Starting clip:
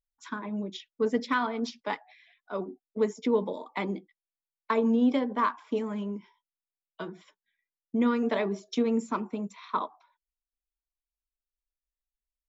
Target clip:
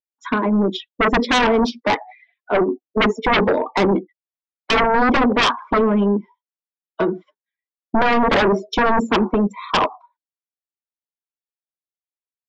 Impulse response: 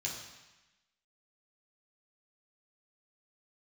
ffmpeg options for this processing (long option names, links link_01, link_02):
-af "highpass=270,afftdn=noise_reduction=25:noise_floor=-48,lowpass=4800,tiltshelf=frequency=970:gain=5.5,aeval=exprs='0.251*sin(PI/2*5.62*val(0)/0.251)':channel_layout=same"